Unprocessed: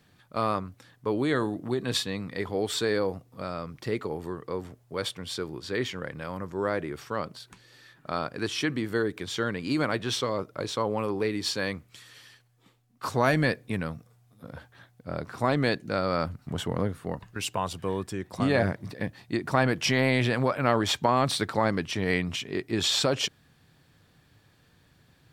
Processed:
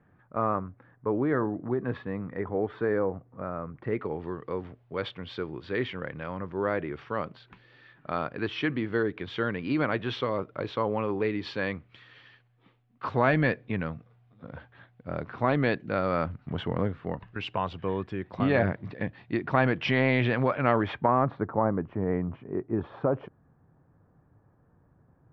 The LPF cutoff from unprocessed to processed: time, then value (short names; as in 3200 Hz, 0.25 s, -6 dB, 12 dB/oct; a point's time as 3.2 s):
LPF 24 dB/oct
3.76 s 1700 Hz
4.17 s 3100 Hz
20.62 s 3100 Hz
21.45 s 1200 Hz